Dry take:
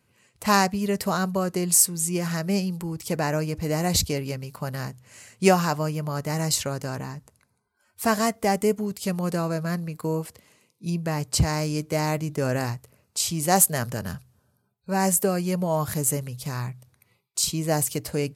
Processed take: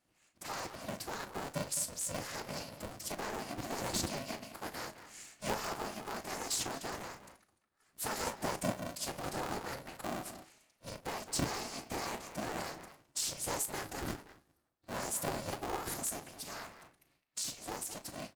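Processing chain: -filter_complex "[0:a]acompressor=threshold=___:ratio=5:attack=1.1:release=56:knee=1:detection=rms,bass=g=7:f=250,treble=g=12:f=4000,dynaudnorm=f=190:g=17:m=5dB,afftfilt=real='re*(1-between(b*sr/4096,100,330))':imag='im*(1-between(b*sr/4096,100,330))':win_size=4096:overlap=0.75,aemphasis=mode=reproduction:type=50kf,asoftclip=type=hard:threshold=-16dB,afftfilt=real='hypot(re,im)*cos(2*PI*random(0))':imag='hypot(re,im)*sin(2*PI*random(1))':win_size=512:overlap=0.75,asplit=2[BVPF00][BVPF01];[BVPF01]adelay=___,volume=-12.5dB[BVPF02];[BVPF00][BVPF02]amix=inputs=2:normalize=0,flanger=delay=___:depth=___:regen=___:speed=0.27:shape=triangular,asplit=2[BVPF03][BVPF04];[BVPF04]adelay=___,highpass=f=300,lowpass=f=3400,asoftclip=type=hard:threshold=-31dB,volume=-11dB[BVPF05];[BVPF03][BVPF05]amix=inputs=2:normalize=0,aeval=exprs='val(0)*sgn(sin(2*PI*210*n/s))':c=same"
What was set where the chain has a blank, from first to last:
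-25dB, 36, 5.7, 8.7, 84, 210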